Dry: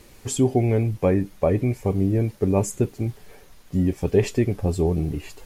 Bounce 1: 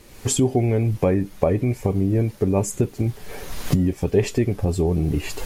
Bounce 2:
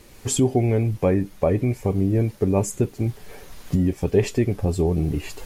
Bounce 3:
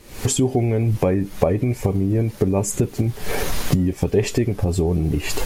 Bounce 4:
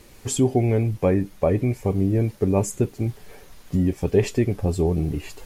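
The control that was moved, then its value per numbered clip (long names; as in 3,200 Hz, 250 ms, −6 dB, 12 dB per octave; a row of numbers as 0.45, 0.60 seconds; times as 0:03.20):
camcorder AGC, rising by: 32, 13, 86, 5 dB per second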